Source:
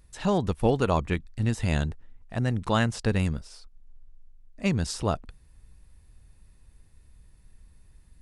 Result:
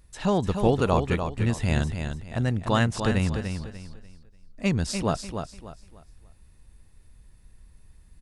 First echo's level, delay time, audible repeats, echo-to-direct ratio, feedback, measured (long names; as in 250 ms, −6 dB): −7.0 dB, 295 ms, 3, −6.5 dB, 30%